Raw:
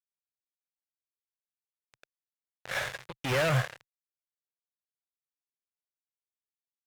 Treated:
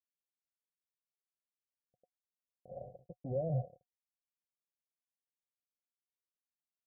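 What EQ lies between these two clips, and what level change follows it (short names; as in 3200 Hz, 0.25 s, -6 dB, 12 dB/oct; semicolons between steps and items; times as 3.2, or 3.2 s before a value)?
rippled Chebyshev low-pass 750 Hz, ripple 9 dB; -2.5 dB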